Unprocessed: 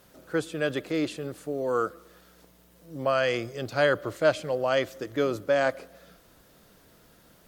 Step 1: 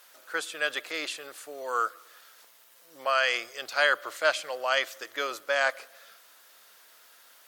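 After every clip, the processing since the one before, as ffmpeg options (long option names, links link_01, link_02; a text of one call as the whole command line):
ffmpeg -i in.wav -af "highpass=1100,volume=5.5dB" out.wav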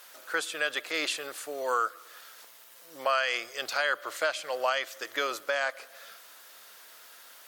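ffmpeg -i in.wav -af "alimiter=limit=-21dB:level=0:latency=1:release=370,volume=4.5dB" out.wav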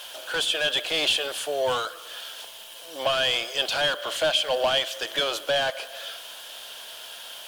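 ffmpeg -i in.wav -filter_complex "[0:a]asplit=2[link_01][link_02];[link_02]highpass=frequency=720:poles=1,volume=20dB,asoftclip=type=tanh:threshold=-16dB[link_03];[link_01][link_03]amix=inputs=2:normalize=0,lowpass=frequency=3000:poles=1,volume=-6dB,equalizer=frequency=630:width_type=o:width=0.33:gain=4,equalizer=frequency=1250:width_type=o:width=0.33:gain=-10,equalizer=frequency=2000:width_type=o:width=0.33:gain=-10,equalizer=frequency=3150:width_type=o:width=0.33:gain=12,equalizer=frequency=10000:width_type=o:width=0.33:gain=6,acrusher=bits=9:dc=4:mix=0:aa=0.000001" out.wav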